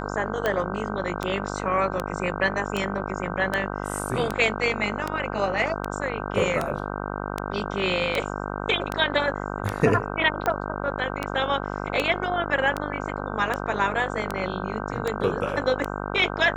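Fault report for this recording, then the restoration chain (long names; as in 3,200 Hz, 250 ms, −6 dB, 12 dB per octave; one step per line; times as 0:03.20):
mains buzz 50 Hz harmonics 31 −31 dBFS
scratch tick 78 rpm −11 dBFS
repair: click removal
hum removal 50 Hz, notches 31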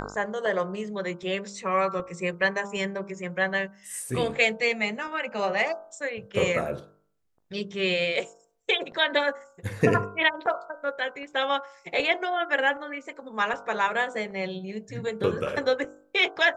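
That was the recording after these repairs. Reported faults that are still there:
none of them is left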